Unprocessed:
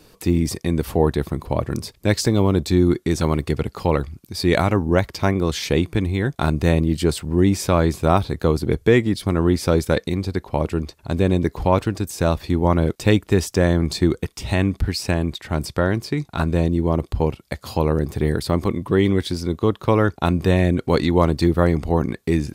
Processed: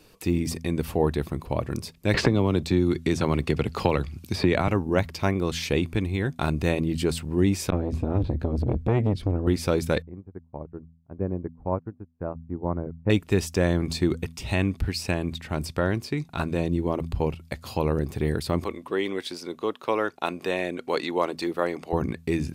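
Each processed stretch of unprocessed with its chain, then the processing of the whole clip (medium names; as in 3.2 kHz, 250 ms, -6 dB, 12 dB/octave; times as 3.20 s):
2.14–4.68 s: treble shelf 7 kHz -10 dB + three bands compressed up and down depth 100%
7.70–9.47 s: RIAA curve playback + compression 5:1, threshold -9 dBFS + transformer saturation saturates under 420 Hz
10.02–13.10 s: Bessel low-pass 980 Hz, order 6 + upward expansion 2.5:1, over -38 dBFS
18.64–21.93 s: high-pass 390 Hz + treble shelf 10 kHz -3.5 dB
whole clip: peaking EQ 2.6 kHz +5 dB 0.33 oct; de-hum 82.11 Hz, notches 3; trim -5 dB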